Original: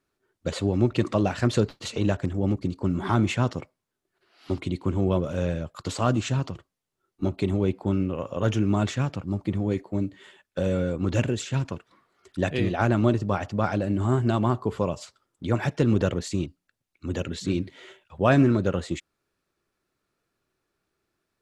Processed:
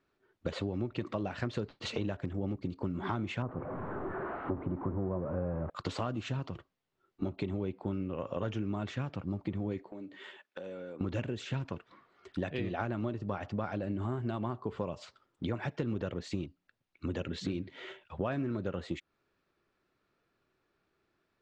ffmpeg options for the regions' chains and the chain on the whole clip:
-filter_complex "[0:a]asettb=1/sr,asplit=3[s0][s1][s2];[s0]atrim=end=3.424[s3];[s1]atrim=start=3.42:end=5.7,asetpts=PTS-STARTPTS,afade=t=in:d=0.004:c=qsin,afade=t=out:st=2.276:d=0.004:c=qsin,aeval=exprs='val(0)+0.5*0.0355*sgn(val(0))':c=same,lowpass=f=1300:w=0.5412,lowpass=f=1300:w=1.3066[s4];[s2]atrim=start=5.696[s5];[s3][s4]acrossfade=d=0.004:c1=hsin:c2=qsin[s6];[s6][s5]acrossfade=d=0.004:c1=qsin:c2=hsin,asettb=1/sr,asplit=3[s7][s8][s9];[s7]atrim=end=9.924[s10];[s8]atrim=start=9.92:end=11.01,asetpts=PTS-STARTPTS,afade=t=in:d=0.004:c=qsin,afade=t=out:st=1.086:d=0.004:c=qsin,highpass=280,acompressor=threshold=0.00891:ratio=10:attack=3.2:release=140:knee=1:detection=peak[s11];[s9]atrim=start=11.006[s12];[s10][s11]acrossfade=d=0.004:c1=hsin:c2=qsin[s13];[s13][s12]acrossfade=d=0.004:c1=qsin:c2=hsin,lowpass=3800,lowshelf=f=120:g=-3.5,acompressor=threshold=0.02:ratio=6,volume=1.26"

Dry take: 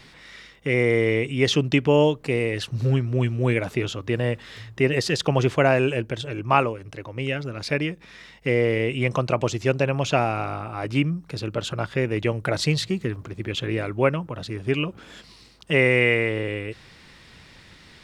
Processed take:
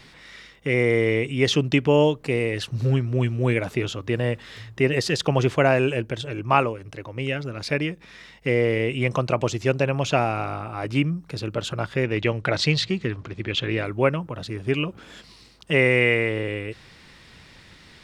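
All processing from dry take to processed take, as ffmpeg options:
-filter_complex "[0:a]asettb=1/sr,asplit=3[s0][s1][s2];[s0]atrim=end=12.034[s3];[s1]atrim=start=12.03:end=13.84,asetpts=PTS-STARTPTS,afade=t=in:d=0.004:c=qsin,afade=t=out:st=1.806:d=0.004:c=qsin,lowpass=3800,highshelf=f=2500:g=10[s4];[s2]atrim=start=13.836[s5];[s3][s4]acrossfade=d=0.004:c1=hsin:c2=qsin[s6];[s6][s5]acrossfade=d=0.004:c1=qsin:c2=hsin"

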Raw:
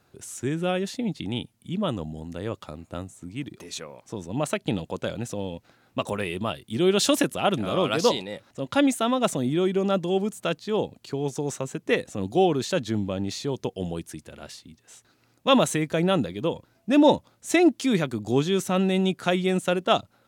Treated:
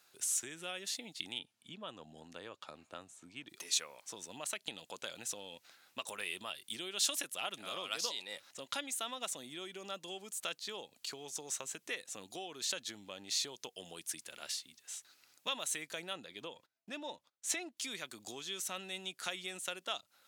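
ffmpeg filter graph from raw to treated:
-filter_complex "[0:a]asettb=1/sr,asplit=3[s0][s1][s2];[s0]atrim=end=1.394[s3];[s1]atrim=start=1.39:end=3.49,asetpts=PTS-STARTPTS,afade=t=in:d=0.004:c=qsin,afade=t=out:st=2.096:d=0.004:c=qsin,highpass=40,aemphasis=mode=reproduction:type=75fm,bandreject=f=2000:w=12[s4];[s2]atrim=start=3.486[s5];[s3][s4]acrossfade=d=0.004:c1=hsin:c2=qsin[s6];[s6][s5]acrossfade=d=0.004:c1=qsin:c2=hsin,asettb=1/sr,asplit=3[s7][s8][s9];[s7]atrim=end=16.134[s10];[s8]atrim=start=16.13:end=17.77,asetpts=PTS-STARTPTS,afade=t=in:d=0.004:c=qsin,afade=t=out:st=1.636:d=0.004:c=qsin,agate=range=0.0794:threshold=0.00141:ratio=16:release=100:detection=peak,aemphasis=mode=reproduction:type=cd[s11];[s9]atrim=start=17.766[s12];[s10][s11]acrossfade=d=0.004:c1=hsin:c2=qsin[s13];[s13][s12]acrossfade=d=0.004:c1=qsin:c2=hsin,highshelf=f=7200:g=-11,acompressor=threshold=0.0282:ratio=6,aderivative,volume=3.35"

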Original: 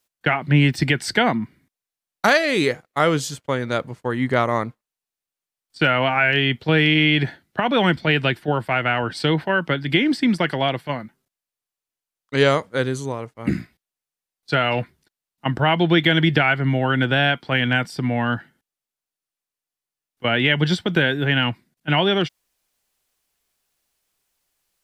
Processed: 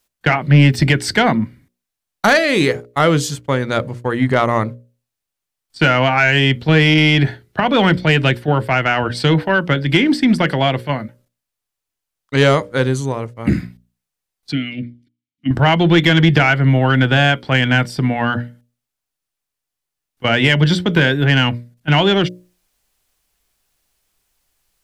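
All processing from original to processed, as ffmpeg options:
-filter_complex "[0:a]asettb=1/sr,asplit=3[s0][s1][s2];[s0]atrim=end=14.524[s3];[s1]atrim=start=14.52:end=15.51,asetpts=PTS-STARTPTS,afade=t=in:d=0.004:c=qsin,afade=t=out:st=0.986:d=0.004:c=qsin,asplit=3[s4][s5][s6];[s4]bandpass=f=270:t=q:w=8,volume=1[s7];[s5]bandpass=f=2290:t=q:w=8,volume=0.501[s8];[s6]bandpass=f=3010:t=q:w=8,volume=0.355[s9];[s7][s8][s9]amix=inputs=3:normalize=0,bass=f=250:g=15,treble=f=4000:g=9[s10];[s2]atrim=start=15.506[s11];[s3][s10]acrossfade=d=0.004:c1=hsin:c2=qsin[s12];[s12][s11]acrossfade=d=0.004:c1=qsin:c2=hsin,lowshelf=f=100:g=11.5,bandreject=f=60:t=h:w=6,bandreject=f=120:t=h:w=6,bandreject=f=180:t=h:w=6,bandreject=f=240:t=h:w=6,bandreject=f=300:t=h:w=6,bandreject=f=360:t=h:w=6,bandreject=f=420:t=h:w=6,bandreject=f=480:t=h:w=6,bandreject=f=540:t=h:w=6,bandreject=f=600:t=h:w=6,acontrast=56,volume=0.891"

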